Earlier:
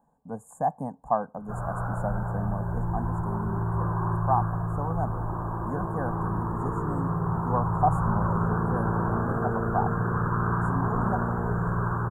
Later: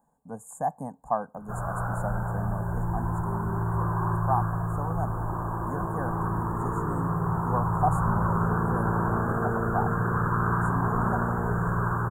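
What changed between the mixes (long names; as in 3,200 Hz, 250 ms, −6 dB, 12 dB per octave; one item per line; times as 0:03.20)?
speech −3.0 dB
master: add high-shelf EQ 2,500 Hz +10.5 dB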